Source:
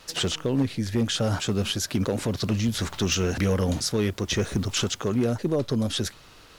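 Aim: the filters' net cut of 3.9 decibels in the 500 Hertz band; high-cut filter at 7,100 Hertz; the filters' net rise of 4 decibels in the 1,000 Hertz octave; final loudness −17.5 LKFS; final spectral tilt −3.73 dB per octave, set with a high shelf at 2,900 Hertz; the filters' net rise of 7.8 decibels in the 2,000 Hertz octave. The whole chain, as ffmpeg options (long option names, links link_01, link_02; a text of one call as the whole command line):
ffmpeg -i in.wav -af "lowpass=7100,equalizer=frequency=500:width_type=o:gain=-6,equalizer=frequency=1000:width_type=o:gain=3.5,equalizer=frequency=2000:width_type=o:gain=8,highshelf=frequency=2900:gain=4,volume=7dB" out.wav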